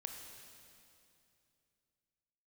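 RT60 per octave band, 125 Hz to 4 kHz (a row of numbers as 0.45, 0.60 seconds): 3.3, 3.0, 2.8, 2.5, 2.5, 2.5 seconds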